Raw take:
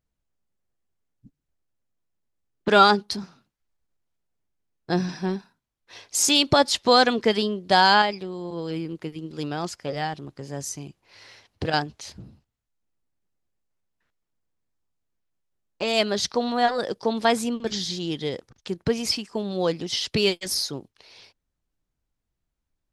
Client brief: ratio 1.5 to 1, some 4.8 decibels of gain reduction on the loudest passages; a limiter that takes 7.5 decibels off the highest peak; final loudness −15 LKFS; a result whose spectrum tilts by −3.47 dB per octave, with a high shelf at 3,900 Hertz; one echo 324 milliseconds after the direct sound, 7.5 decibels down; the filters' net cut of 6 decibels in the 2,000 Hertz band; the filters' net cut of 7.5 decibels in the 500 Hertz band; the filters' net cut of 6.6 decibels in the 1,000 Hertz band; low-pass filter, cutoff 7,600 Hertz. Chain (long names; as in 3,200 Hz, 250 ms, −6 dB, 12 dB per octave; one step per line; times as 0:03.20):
low-pass filter 7,600 Hz
parametric band 500 Hz −8 dB
parametric band 1,000 Hz −4.5 dB
parametric band 2,000 Hz −7 dB
high-shelf EQ 3,900 Hz +4.5 dB
downward compressor 1.5 to 1, threshold −29 dBFS
brickwall limiter −19.5 dBFS
single-tap delay 324 ms −7.5 dB
level +16 dB